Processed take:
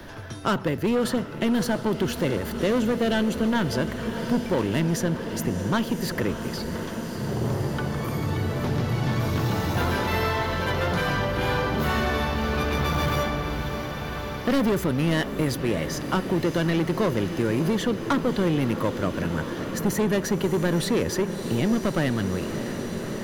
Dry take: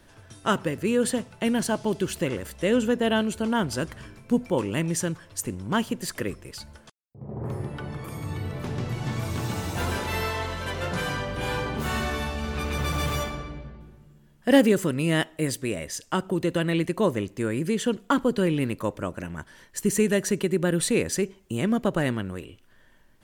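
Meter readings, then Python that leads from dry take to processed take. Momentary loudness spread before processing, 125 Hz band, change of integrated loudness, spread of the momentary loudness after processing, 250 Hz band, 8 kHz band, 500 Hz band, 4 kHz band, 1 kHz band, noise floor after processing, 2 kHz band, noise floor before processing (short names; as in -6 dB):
11 LU, +4.0 dB, +1.5 dB, 6 LU, +1.5 dB, -3.5 dB, +1.0 dB, +1.5 dB, +3.0 dB, -33 dBFS, +2.0 dB, -56 dBFS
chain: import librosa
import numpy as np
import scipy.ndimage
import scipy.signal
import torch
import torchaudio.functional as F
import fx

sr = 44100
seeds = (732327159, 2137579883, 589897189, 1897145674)

p1 = fx.peak_eq(x, sr, hz=8300.0, db=-14.0, octaves=0.56)
p2 = 10.0 ** (-23.0 / 20.0) * np.tanh(p1 / 10.0 ** (-23.0 / 20.0))
p3 = fx.peak_eq(p2, sr, hz=2600.0, db=-3.0, octaves=0.45)
p4 = p3 + fx.echo_diffused(p3, sr, ms=611, feedback_pct=80, wet_db=-12.5, dry=0)
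p5 = fx.band_squash(p4, sr, depth_pct=40)
y = F.gain(torch.from_numpy(p5), 5.0).numpy()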